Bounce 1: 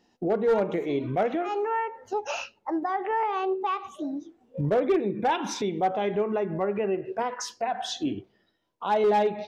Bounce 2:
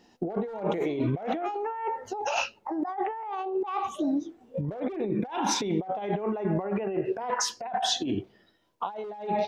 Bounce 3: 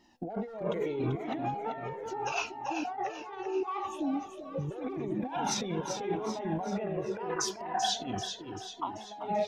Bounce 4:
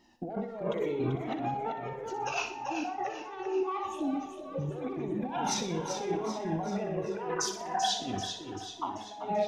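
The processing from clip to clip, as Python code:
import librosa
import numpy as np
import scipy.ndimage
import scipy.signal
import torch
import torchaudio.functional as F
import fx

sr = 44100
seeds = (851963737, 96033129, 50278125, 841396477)

y1 = fx.dynamic_eq(x, sr, hz=800.0, q=2.3, threshold_db=-41.0, ratio=4.0, max_db=8)
y1 = fx.over_compress(y1, sr, threshold_db=-31.0, ratio=-1.0)
y2 = fx.echo_feedback(y1, sr, ms=388, feedback_pct=52, wet_db=-7.0)
y2 = fx.comb_cascade(y2, sr, direction='falling', hz=0.79)
y3 = fx.echo_feedback(y2, sr, ms=61, feedback_pct=47, wet_db=-9.5)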